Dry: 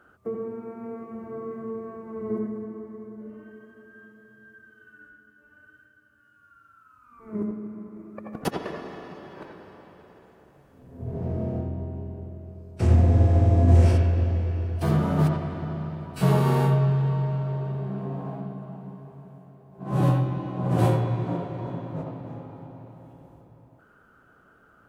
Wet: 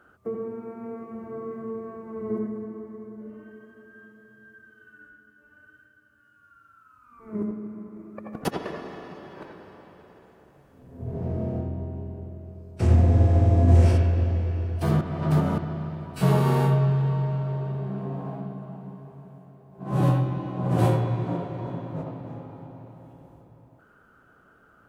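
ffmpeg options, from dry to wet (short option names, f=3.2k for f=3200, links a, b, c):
-filter_complex "[0:a]asplit=3[a][b][c];[a]atrim=end=15.012[d];[b]atrim=start=15.008:end=15.582,asetpts=PTS-STARTPTS,areverse[e];[c]atrim=start=15.578[f];[d][e]acrossfade=d=0.004:c1=hsin:c2=hsin[g];[g][f]acrossfade=d=0.004:c1=hsin:c2=hsin"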